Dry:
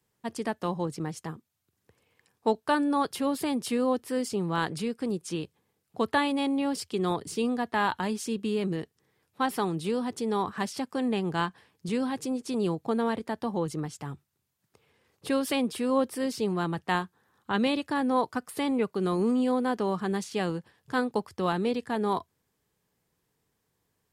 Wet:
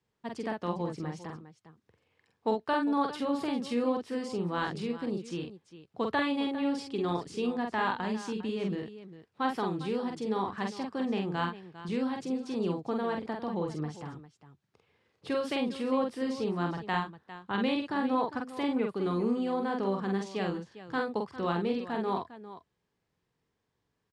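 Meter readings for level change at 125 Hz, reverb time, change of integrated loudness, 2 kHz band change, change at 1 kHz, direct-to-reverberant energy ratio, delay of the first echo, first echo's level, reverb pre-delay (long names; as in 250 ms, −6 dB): −3.0 dB, no reverb audible, −3.0 dB, −3.0 dB, −3.0 dB, no reverb audible, 46 ms, −3.5 dB, no reverb audible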